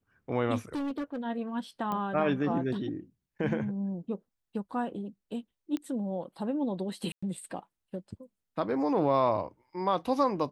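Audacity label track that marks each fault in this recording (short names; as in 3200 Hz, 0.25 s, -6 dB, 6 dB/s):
0.750000	1.190000	clipped -30 dBFS
1.920000	1.920000	pop -21 dBFS
5.770000	5.770000	pop -22 dBFS
7.120000	7.220000	gap 0.105 s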